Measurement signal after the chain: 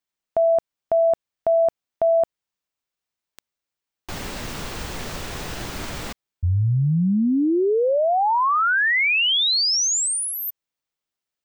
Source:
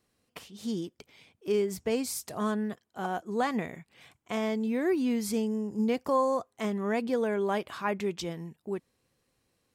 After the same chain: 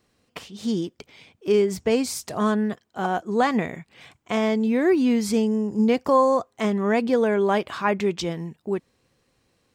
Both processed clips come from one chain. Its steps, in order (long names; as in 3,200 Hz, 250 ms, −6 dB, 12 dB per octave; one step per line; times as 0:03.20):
parametric band 12,000 Hz −10 dB 0.7 octaves
level +8 dB